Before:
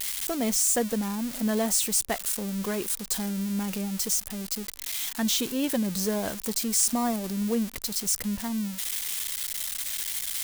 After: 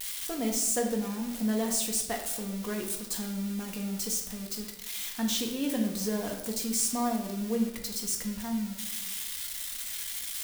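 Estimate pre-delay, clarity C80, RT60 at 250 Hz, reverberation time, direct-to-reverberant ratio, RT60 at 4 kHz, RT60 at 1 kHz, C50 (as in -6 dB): 4 ms, 8.5 dB, 1.0 s, 0.90 s, 1.0 dB, 0.75 s, 0.85 s, 6.0 dB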